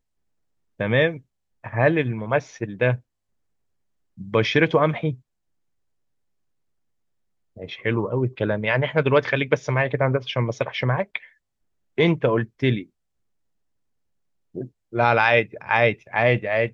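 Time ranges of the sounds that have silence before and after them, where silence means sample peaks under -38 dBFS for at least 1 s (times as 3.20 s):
4.18–5.15 s
7.57–12.83 s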